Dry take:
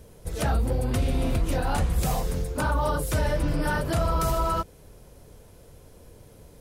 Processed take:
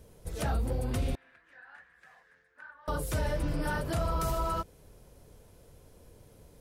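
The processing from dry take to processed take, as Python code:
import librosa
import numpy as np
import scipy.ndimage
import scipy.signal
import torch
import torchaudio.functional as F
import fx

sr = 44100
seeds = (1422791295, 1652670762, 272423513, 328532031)

y = fx.bandpass_q(x, sr, hz=1700.0, q=11.0, at=(1.15, 2.88))
y = F.gain(torch.from_numpy(y), -6.0).numpy()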